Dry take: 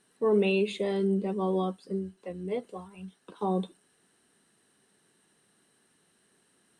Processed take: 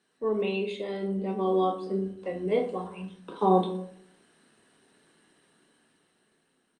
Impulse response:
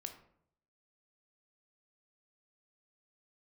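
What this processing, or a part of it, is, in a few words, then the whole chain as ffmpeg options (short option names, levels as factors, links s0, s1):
far-field microphone of a smart speaker: -filter_complex "[0:a]highpass=f=77:w=0.5412,highpass=f=77:w=1.3066,asplit=3[s0][s1][s2];[s0]afade=t=out:st=0.5:d=0.02[s3];[s1]bandreject=f=60:t=h:w=6,bandreject=f=120:t=h:w=6,bandreject=f=180:t=h:w=6,afade=t=in:st=0.5:d=0.02,afade=t=out:st=2.45:d=0.02[s4];[s2]afade=t=in:st=2.45:d=0.02[s5];[s3][s4][s5]amix=inputs=3:normalize=0,lowpass=6400,aecho=1:1:27|56:0.422|0.141[s6];[1:a]atrim=start_sample=2205[s7];[s6][s7]afir=irnorm=-1:irlink=0,highpass=f=150:p=1,dynaudnorm=f=470:g=7:m=3.55" -ar 48000 -c:a libopus -b:a 48k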